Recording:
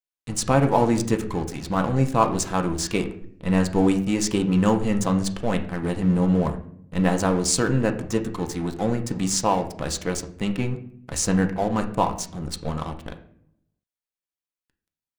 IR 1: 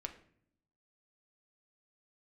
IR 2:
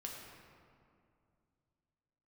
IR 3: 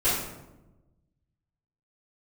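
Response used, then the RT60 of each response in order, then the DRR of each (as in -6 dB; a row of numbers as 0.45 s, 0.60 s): 1; no single decay rate, 2.4 s, 1.0 s; 4.5 dB, -2.0 dB, -13.0 dB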